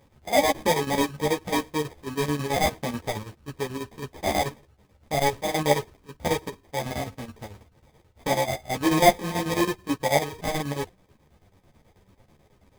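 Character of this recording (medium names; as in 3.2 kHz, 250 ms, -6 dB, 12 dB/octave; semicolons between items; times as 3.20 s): aliases and images of a low sample rate 1.4 kHz, jitter 0%; chopped level 9.2 Hz, depth 65%, duty 65%; a shimmering, thickened sound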